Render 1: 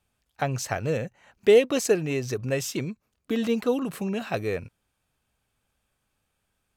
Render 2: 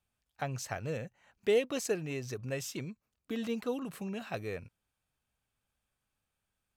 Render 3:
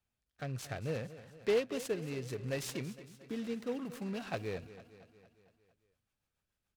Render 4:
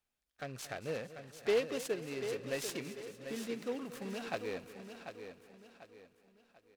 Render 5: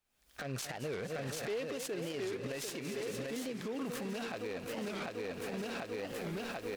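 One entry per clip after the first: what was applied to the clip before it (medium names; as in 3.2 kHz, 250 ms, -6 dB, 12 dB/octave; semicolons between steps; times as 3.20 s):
peaking EQ 380 Hz -2.5 dB 1.4 oct; trim -8.5 dB
rotary cabinet horn 0.65 Hz, later 7 Hz, at 4.54 s; feedback delay 228 ms, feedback 57%, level -15 dB; delay time shaken by noise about 1.6 kHz, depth 0.034 ms
peaking EQ 99 Hz -13.5 dB 1.7 oct; on a send: feedback delay 742 ms, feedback 36%, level -9 dB; on the sum: trim +1 dB
recorder AGC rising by 70 dB/s; peak limiter -30.5 dBFS, peak gain reduction 11 dB; warped record 45 rpm, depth 250 cents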